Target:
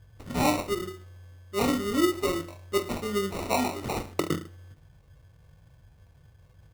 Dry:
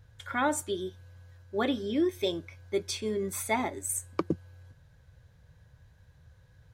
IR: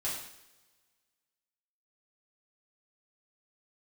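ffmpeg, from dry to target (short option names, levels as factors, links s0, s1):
-filter_complex "[0:a]aecho=1:1:20|44|72.8|107.4|148.8:0.631|0.398|0.251|0.158|0.1,acrusher=samples=27:mix=1:aa=0.000001,asplit=2[s0][s1];[1:a]atrim=start_sample=2205[s2];[s1][s2]afir=irnorm=-1:irlink=0,volume=0.0631[s3];[s0][s3]amix=inputs=2:normalize=0"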